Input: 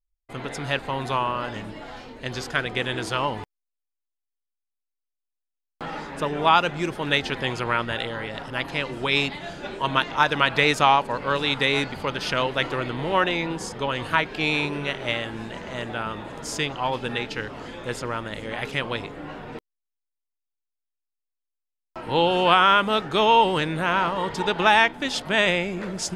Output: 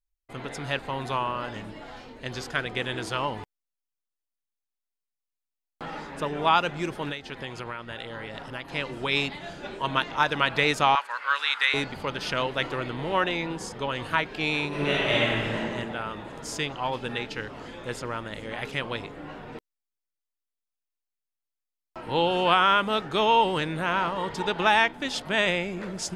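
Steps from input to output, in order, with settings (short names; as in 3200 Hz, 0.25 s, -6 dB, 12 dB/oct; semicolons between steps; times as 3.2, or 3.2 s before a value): 7.09–8.71 compressor 6:1, threshold -29 dBFS, peak gain reduction 12.5 dB; 10.95–11.74 resonant high-pass 1400 Hz, resonance Q 2.3; 14.68–15.57 reverb throw, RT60 1.8 s, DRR -7.5 dB; gain -3.5 dB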